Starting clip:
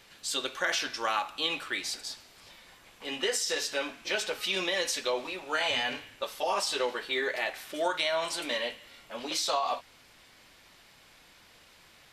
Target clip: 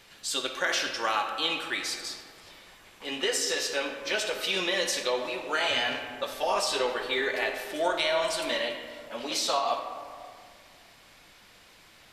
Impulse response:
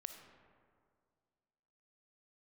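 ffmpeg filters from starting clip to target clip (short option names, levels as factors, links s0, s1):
-filter_complex "[0:a]asettb=1/sr,asplit=3[s0][s1][s2];[s0]atrim=end=6.324[s3];[s1]atrim=start=6.32:end=8.54,asetpts=PTS-STARTPTS,afade=t=in:d=0.004:c=qsin,afade=t=out:st=2.216:d=0.004:c=qsin,lowshelf=f=68:g=11[s4];[s2]atrim=start=8.536[s5];[s3][s4]acrossfade=d=0.004:c1=hsin:c2=qsin[s6];[s6][s5]acrossfade=d=0.004:c1=qsin:c2=hsin[s7];[1:a]atrim=start_sample=2205,asetrate=43659,aresample=44100[s8];[s7][s8]afir=irnorm=-1:irlink=0,volume=2.11"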